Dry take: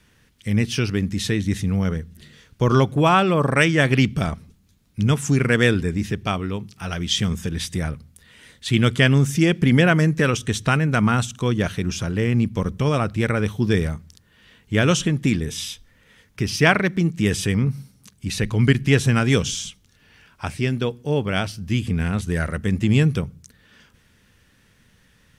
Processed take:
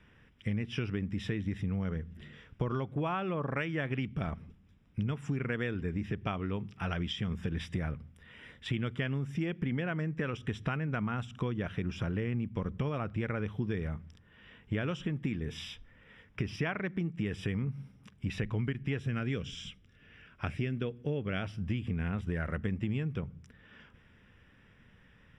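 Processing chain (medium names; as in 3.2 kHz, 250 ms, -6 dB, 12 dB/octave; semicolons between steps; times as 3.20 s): 18.99–21.43 s: peaking EQ 900 Hz -10 dB 0.55 oct; compression 12:1, threshold -27 dBFS, peak gain reduction 17.5 dB; Savitzky-Golay filter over 25 samples; trim -2.5 dB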